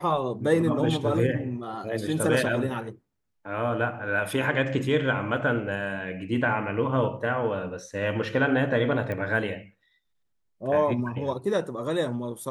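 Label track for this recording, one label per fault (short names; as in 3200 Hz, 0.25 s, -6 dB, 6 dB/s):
9.120000	9.120000	pop -20 dBFS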